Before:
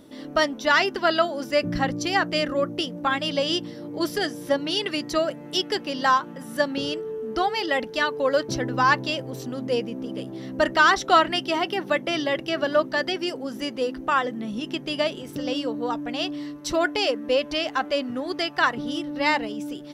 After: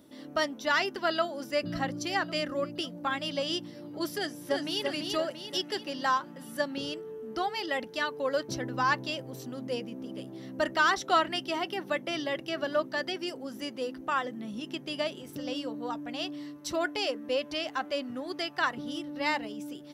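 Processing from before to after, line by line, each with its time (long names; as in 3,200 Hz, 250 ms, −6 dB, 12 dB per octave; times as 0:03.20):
0:01.10–0:01.68: delay throw 550 ms, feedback 60%, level −17.5 dB
0:04.16–0:04.84: delay throw 340 ms, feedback 50%, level −4 dB
whole clip: high-pass filter 67 Hz; high-shelf EQ 10,000 Hz +7 dB; notch filter 460 Hz, Q 14; level −7.5 dB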